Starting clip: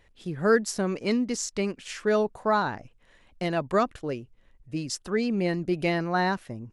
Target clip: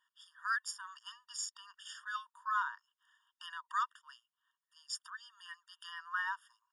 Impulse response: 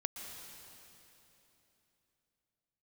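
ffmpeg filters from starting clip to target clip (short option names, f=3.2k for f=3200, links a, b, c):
-filter_complex "[0:a]acrossover=split=850[a][b];[a]aeval=exprs='val(0)*(1-0.5/2+0.5/2*cos(2*PI*2.5*n/s))':c=same[c];[b]aeval=exprs='val(0)*(1-0.5/2-0.5/2*cos(2*PI*2.5*n/s))':c=same[d];[c][d]amix=inputs=2:normalize=0,afftfilt=real='re*eq(mod(floor(b*sr/1024/930),2),1)':imag='im*eq(mod(floor(b*sr/1024/930),2),1)':win_size=1024:overlap=0.75,volume=-4dB"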